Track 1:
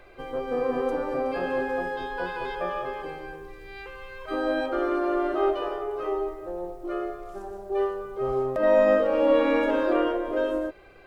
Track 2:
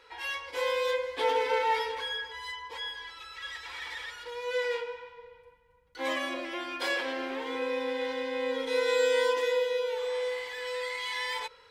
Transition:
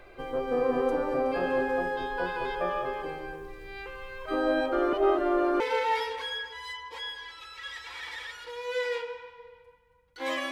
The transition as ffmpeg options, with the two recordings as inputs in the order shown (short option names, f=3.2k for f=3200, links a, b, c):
-filter_complex "[0:a]apad=whole_dur=10.51,atrim=end=10.51,asplit=2[a][b];[a]atrim=end=4.932[c];[b]atrim=start=4.928:end=5.602,asetpts=PTS-STARTPTS,areverse[d];[1:a]atrim=start=1.388:end=6.3[e];[c][d]acrossfade=d=0.004:c1=hsin:c2=hsin[f];[f][e]acrossfade=d=0.004:c1=hsin:c2=hsin"